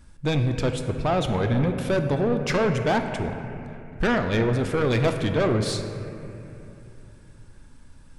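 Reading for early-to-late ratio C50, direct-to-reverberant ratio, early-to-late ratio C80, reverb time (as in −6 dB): 7.0 dB, 5.5 dB, 7.5 dB, 2.9 s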